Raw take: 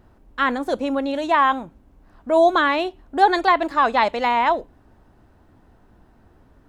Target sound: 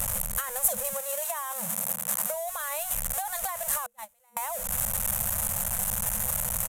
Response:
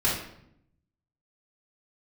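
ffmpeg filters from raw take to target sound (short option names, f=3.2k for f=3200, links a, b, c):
-filter_complex "[0:a]aeval=exprs='val(0)+0.5*0.0891*sgn(val(0))':c=same,asettb=1/sr,asplit=3[a][b][c];[a]atrim=end=0.934[d];[b]atrim=start=0.93:end=2.34,asetpts=PTS-STARTPTS,afade=t=in:d=0.004:c=qsin,afade=t=out:st=1.406:d=0.004:c=qsin,highpass=f=170:w=0.5412,highpass=f=170:w=1.3066[e];[c]atrim=start=2.336[f];[d][e]acrossfade=d=0.004:c1=hsin:c2=qsin[g];[g][f]acrossfade=d=0.004:c1=qsin:c2=hsin,asettb=1/sr,asplit=3[h][i][j];[h]atrim=end=3.864[k];[i]atrim=start=3.86:end=4.37,asetpts=PTS-STARTPTS,afade=t=in:d=0.004:c=qsin,afade=t=out:st=0.506:d=0.004:c=qsin,agate=range=-42dB:threshold=-11dB:ratio=16:detection=peak[l];[j]atrim=start=4.366[m];[k][l]acrossfade=d=0.004:c1=hsin:c2=qsin[n];[n][m]acrossfade=d=0.004:c1=qsin:c2=hsin,afftfilt=real='re*(1-between(b*sr/4096,220,480))':imag='im*(1-between(b*sr/4096,220,480))':win_size=4096:overlap=0.75,alimiter=limit=-12dB:level=0:latency=1:release=19,acompressor=threshold=-26dB:ratio=6,aexciter=amount=15.6:drive=4.2:freq=7k,aresample=32000,aresample=44100,volume=-7dB"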